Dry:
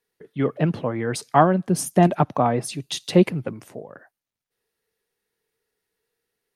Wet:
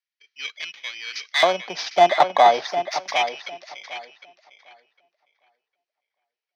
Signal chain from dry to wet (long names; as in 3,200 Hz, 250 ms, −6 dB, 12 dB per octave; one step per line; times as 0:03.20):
samples in bit-reversed order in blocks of 16 samples
elliptic low-pass filter 5,800 Hz, stop band 40 dB
in parallel at +1.5 dB: downward compressor, threshold −33 dBFS, peak gain reduction 20 dB
on the sum: soft clipping −9.5 dBFS, distortion −16 dB
auto-filter high-pass square 0.35 Hz 730–2,100 Hz
on a send: tape delay 755 ms, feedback 31%, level −6 dB, low-pass 3,400 Hz
on the sum: multiband upward and downward expander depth 40%